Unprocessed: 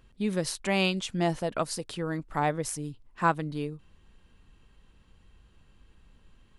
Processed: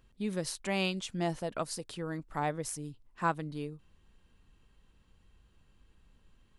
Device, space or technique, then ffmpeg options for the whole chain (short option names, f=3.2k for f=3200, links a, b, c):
exciter from parts: -filter_complex "[0:a]asplit=2[a][b];[b]highpass=3.5k,asoftclip=type=tanh:threshold=-26dB,volume=-12dB[c];[a][c]amix=inputs=2:normalize=0,volume=-5.5dB"